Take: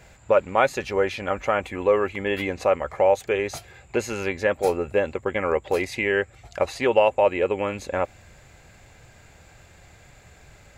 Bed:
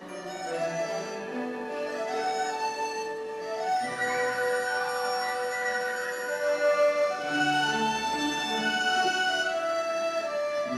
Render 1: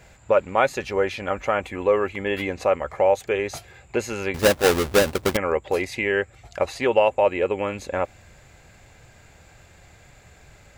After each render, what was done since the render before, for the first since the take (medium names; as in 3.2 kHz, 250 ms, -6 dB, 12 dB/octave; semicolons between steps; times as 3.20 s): 4.34–5.37 s: square wave that keeps the level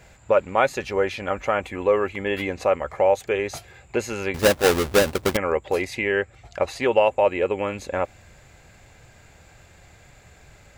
5.98–6.68 s: treble shelf 10 kHz -10 dB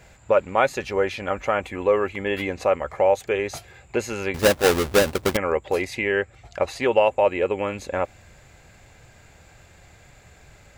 no audible change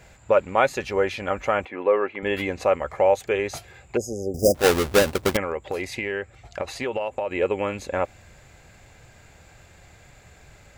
1.65–2.23 s: band-pass 280–2400 Hz; 3.97–4.55 s: brick-wall FIR band-stop 780–4800 Hz; 5.40–7.31 s: compression, threshold -23 dBFS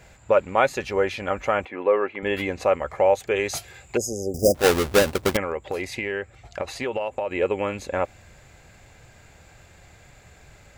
3.36–4.38 s: treble shelf 2.8 kHz +8.5 dB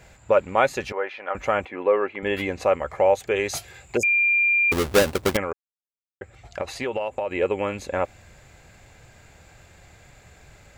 0.92–1.35 s: band-pass 640–2100 Hz; 4.03–4.72 s: bleep 2.39 kHz -16.5 dBFS; 5.53–6.21 s: mute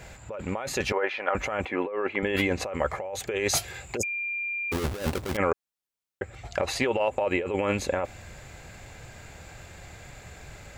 compressor with a negative ratio -28 dBFS, ratio -1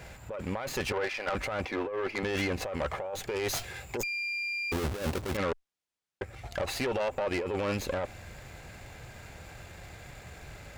valve stage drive 25 dB, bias 0.35; sliding maximum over 3 samples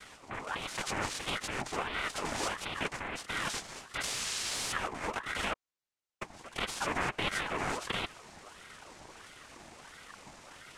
noise-vocoded speech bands 3; ring modulator with a swept carrier 1.1 kHz, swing 60%, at 1.5 Hz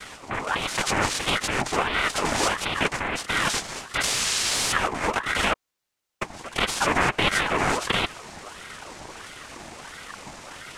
trim +11 dB